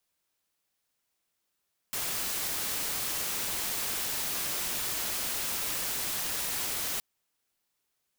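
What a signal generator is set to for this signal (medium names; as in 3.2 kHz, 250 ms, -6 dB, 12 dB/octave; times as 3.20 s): noise white, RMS -32.5 dBFS 5.07 s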